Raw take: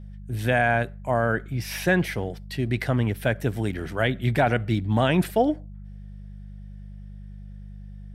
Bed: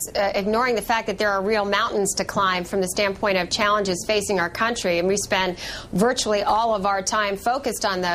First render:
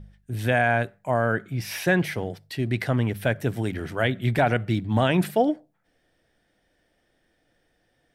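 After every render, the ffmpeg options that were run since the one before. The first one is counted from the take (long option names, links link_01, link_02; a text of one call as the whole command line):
ffmpeg -i in.wav -af "bandreject=frequency=50:width_type=h:width=4,bandreject=frequency=100:width_type=h:width=4,bandreject=frequency=150:width_type=h:width=4,bandreject=frequency=200:width_type=h:width=4" out.wav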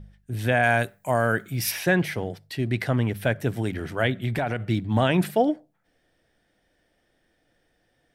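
ffmpeg -i in.wav -filter_complex "[0:a]asplit=3[link_01][link_02][link_03];[link_01]afade=type=out:start_time=0.62:duration=0.02[link_04];[link_02]aemphasis=mode=production:type=75kf,afade=type=in:start_time=0.62:duration=0.02,afade=type=out:start_time=1.7:duration=0.02[link_05];[link_03]afade=type=in:start_time=1.7:duration=0.02[link_06];[link_04][link_05][link_06]amix=inputs=3:normalize=0,asettb=1/sr,asplit=3[link_07][link_08][link_09];[link_07]atrim=end=4.214[link_10];[link_08]atrim=start=4.21:end=4.66,asetpts=PTS-STARTPTS,afade=type=in:duration=0.004:curve=qsin,afade=type=out:start_time=0.446:duration=0.004:curve=qsin,acompressor=threshold=-22dB:ratio=4:attack=3.2:release=140:knee=1:detection=peak[link_11];[link_09]atrim=start=4.656[link_12];[link_10][link_11]acrossfade=duration=0.004:curve1=hsin:curve2=qsin[link_13];[link_13][link_12]acrossfade=duration=0.004:curve1=qsin:curve2=hsin" out.wav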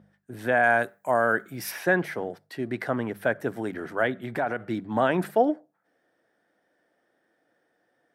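ffmpeg -i in.wav -af "highpass=260,highshelf=frequency=2000:width_type=q:width=1.5:gain=-7.5" out.wav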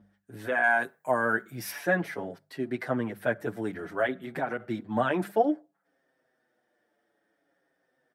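ffmpeg -i in.wav -filter_complex "[0:a]asplit=2[link_01][link_02];[link_02]adelay=6.5,afreqshift=-0.57[link_03];[link_01][link_03]amix=inputs=2:normalize=1" out.wav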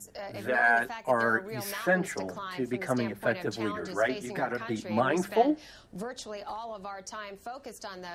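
ffmpeg -i in.wav -i bed.wav -filter_complex "[1:a]volume=-18.5dB[link_01];[0:a][link_01]amix=inputs=2:normalize=0" out.wav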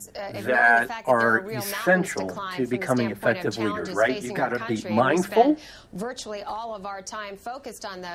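ffmpeg -i in.wav -af "volume=6dB" out.wav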